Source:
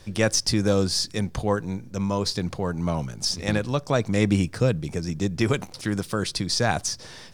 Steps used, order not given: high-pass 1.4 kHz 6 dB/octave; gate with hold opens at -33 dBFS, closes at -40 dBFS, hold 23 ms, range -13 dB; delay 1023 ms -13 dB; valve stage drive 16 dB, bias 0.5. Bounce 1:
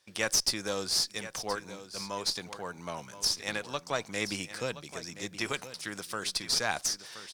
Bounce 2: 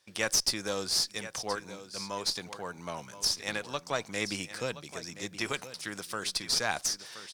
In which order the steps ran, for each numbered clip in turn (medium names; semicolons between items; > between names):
gate with hold > high-pass > valve stage > delay; delay > gate with hold > high-pass > valve stage